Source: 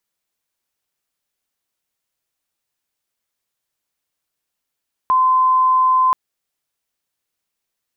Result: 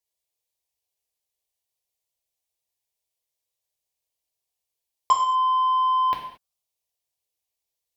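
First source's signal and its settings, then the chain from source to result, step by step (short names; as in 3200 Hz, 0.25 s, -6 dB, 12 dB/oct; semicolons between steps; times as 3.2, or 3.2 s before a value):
tone sine 1030 Hz -11 dBFS 1.03 s
envelope phaser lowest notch 240 Hz, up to 1300 Hz, full sweep at -12 dBFS; added harmonics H 5 -19 dB, 7 -16 dB, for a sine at -11 dBFS; non-linear reverb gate 0.25 s falling, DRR -1 dB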